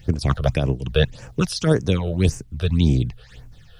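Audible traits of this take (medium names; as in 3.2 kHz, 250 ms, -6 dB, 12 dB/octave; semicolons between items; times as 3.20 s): phasing stages 8, 1.8 Hz, lowest notch 260–3800 Hz; a quantiser's noise floor 12-bit, dither none; random flutter of the level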